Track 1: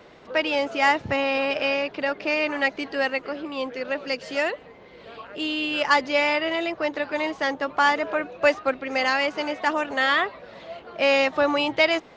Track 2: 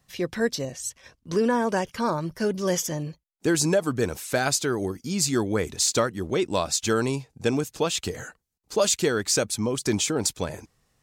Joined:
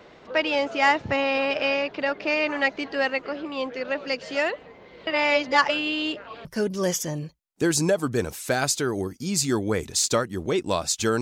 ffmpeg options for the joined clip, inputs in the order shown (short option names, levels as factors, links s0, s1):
-filter_complex "[0:a]apad=whole_dur=11.21,atrim=end=11.21,asplit=2[s0][s1];[s0]atrim=end=5.072[s2];[s1]atrim=start=5.068:end=6.452,asetpts=PTS-STARTPTS,areverse[s3];[1:a]atrim=start=2.288:end=7.05[s4];[s2][s3]acrossfade=d=0.004:c1=hsin:c2=hsin[s5];[s5][s4]acrossfade=d=0.004:c1=hsin:c2=hsin"